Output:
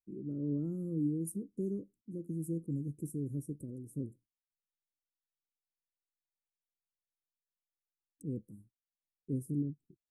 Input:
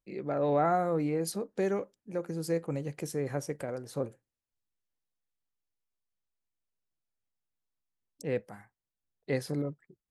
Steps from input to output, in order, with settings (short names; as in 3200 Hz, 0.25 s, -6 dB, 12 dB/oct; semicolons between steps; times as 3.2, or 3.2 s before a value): gate -57 dBFS, range -16 dB; elliptic band-stop 310–9100 Hz, stop band 40 dB; high shelf 7000 Hz -6 dB